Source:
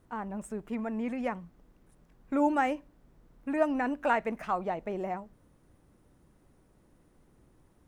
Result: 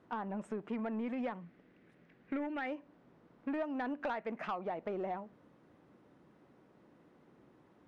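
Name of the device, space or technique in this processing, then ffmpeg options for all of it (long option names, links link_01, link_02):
AM radio: -filter_complex "[0:a]highpass=190,lowpass=3300,acompressor=threshold=-37dB:ratio=5,asoftclip=type=tanh:threshold=-32dB,asettb=1/sr,asplit=3[link_01][link_02][link_03];[link_01]atrim=end=1.424[link_04];[link_02]atrim=start=1.42:end=2.67,asetpts=PTS-STARTPTS,afade=type=in:duration=0.004:curve=qsin,afade=type=out:start_time=1.246:duration=0.004:curve=qsin,equalizer=frequency=1000:width_type=o:width=1:gain=-8,equalizer=frequency=2000:width_type=o:width=1:gain=8,equalizer=frequency=8000:width_type=o:width=1:gain=-5[link_05];[link_03]atrim=start=2.666[link_06];[link_04][link_05]acrossfade=duration=0.004:curve1=hsin:curve2=qsin[link_07];[link_07][link_06]acrossfade=duration=0.004:curve1=qsin:curve2=hsin,volume=3.5dB"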